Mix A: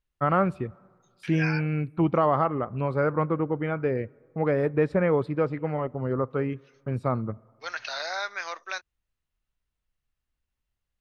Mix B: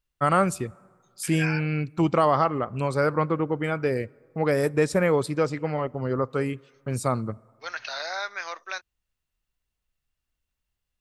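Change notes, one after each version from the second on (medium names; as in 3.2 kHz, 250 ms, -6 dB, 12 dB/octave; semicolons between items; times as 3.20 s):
first voice: remove distance through air 470 m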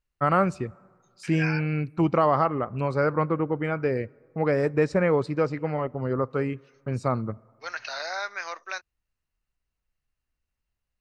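first voice: add distance through air 150 m; master: add peaking EQ 3.4 kHz -9 dB 0.22 oct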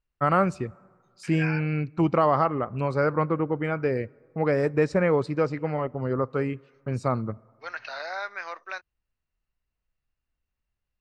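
second voice: add distance through air 190 m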